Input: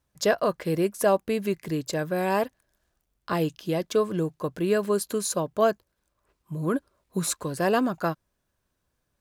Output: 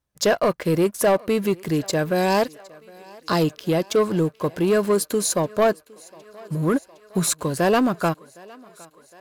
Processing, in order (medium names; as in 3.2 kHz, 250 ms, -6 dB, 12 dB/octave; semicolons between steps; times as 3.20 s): 2.15–3.43 s: high-order bell 5.3 kHz +10 dB 1.1 oct; waveshaping leveller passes 2; thinning echo 761 ms, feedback 72%, high-pass 310 Hz, level -23 dB; trim -1 dB